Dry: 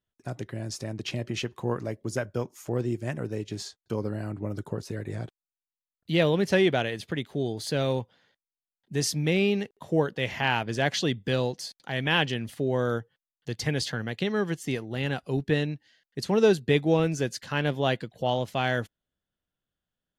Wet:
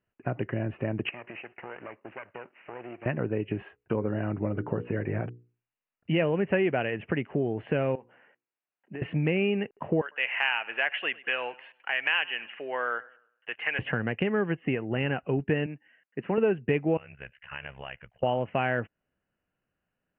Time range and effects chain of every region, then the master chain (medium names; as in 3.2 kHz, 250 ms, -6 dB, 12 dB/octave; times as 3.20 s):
1.09–3.06 s: comb filter that takes the minimum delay 0.45 ms + high-pass 1.4 kHz 6 dB/octave + compression 4:1, threshold -45 dBFS
3.63–6.24 s: brick-wall FIR low-pass 10 kHz + hum notches 60/120/180/240/300/360/420/480 Hz
7.95–9.02 s: band-pass 260–3200 Hz + compression 8:1, threshold -41 dBFS + hum notches 60/120/180/240/300/360/420/480 Hz
10.01–13.79 s: high-pass 1.1 kHz + treble shelf 3.8 kHz +11 dB + modulated delay 101 ms, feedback 36%, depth 82 cents, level -22.5 dB
15.66–16.38 s: band-pass 220–2300 Hz + peaking EQ 580 Hz -6 dB 2.9 oct
16.97–18.23 s: AM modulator 68 Hz, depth 90% + amplifier tone stack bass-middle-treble 10-0-10 + compression 3:1, threshold -43 dBFS
whole clip: Chebyshev low-pass 2.9 kHz, order 8; bass shelf 68 Hz -9 dB; compression 3:1, threshold -34 dBFS; trim +8.5 dB